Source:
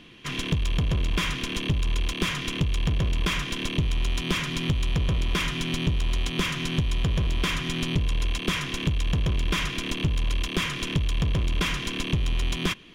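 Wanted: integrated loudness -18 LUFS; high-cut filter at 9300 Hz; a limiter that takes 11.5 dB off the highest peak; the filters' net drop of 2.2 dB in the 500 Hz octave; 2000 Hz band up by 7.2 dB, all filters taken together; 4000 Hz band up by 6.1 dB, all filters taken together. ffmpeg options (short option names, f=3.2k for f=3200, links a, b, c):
-af "lowpass=9.3k,equalizer=f=500:t=o:g=-3.5,equalizer=f=2k:t=o:g=7.5,equalizer=f=4k:t=o:g=5,volume=12dB,alimiter=limit=-10dB:level=0:latency=1"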